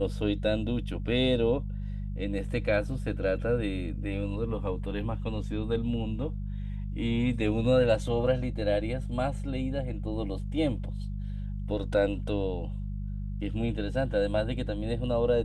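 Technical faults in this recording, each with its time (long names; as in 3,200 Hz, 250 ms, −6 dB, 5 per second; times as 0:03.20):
mains hum 50 Hz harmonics 4 −34 dBFS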